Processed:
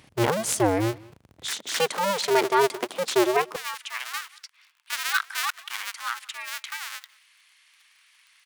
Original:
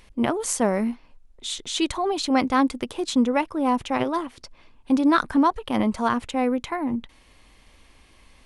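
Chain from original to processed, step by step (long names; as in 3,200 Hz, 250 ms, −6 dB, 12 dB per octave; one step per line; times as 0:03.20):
sub-harmonics by changed cycles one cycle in 2, inverted
high-pass filter 82 Hz 24 dB per octave, from 0:01.51 230 Hz, from 0:03.56 1,400 Hz
slap from a distant wall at 32 metres, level −23 dB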